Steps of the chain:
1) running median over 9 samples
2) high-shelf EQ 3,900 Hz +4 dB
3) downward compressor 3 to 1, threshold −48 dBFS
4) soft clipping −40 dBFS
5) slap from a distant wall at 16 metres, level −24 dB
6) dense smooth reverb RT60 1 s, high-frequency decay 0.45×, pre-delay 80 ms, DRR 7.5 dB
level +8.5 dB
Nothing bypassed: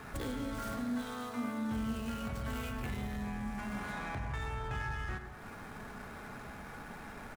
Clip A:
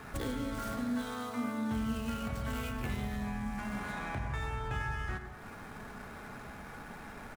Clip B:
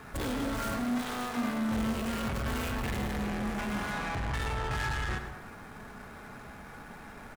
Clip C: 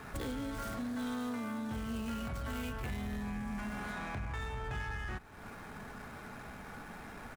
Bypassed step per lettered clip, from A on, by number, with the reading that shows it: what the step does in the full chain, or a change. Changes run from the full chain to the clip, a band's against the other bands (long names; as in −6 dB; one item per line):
4, distortion level −18 dB
3, average gain reduction 10.0 dB
6, change in crest factor −3.0 dB